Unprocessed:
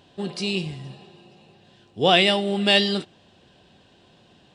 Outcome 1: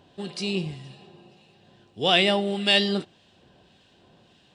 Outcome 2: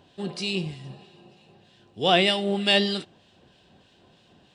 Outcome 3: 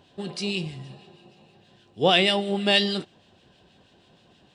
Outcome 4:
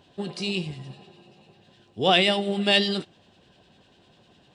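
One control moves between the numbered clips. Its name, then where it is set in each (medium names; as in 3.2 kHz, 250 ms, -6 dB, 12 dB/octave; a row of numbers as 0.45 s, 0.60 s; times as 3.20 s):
harmonic tremolo, rate: 1.7 Hz, 3.2 Hz, 6.3 Hz, 10 Hz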